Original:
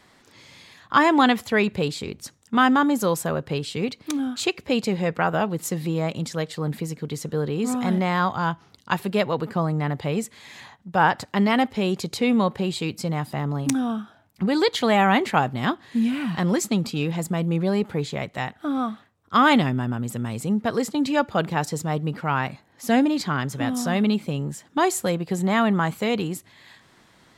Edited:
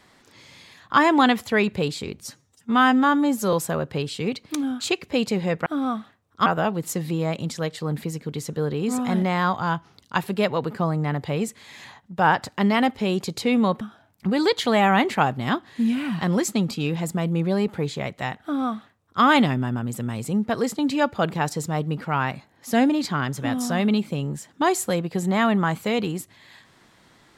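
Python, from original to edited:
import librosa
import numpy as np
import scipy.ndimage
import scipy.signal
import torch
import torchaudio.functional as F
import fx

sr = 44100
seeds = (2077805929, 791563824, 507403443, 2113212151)

y = fx.edit(x, sr, fx.stretch_span(start_s=2.21, length_s=0.88, factor=1.5),
    fx.cut(start_s=12.57, length_s=1.4),
    fx.duplicate(start_s=18.59, length_s=0.8, to_s=5.22), tone=tone)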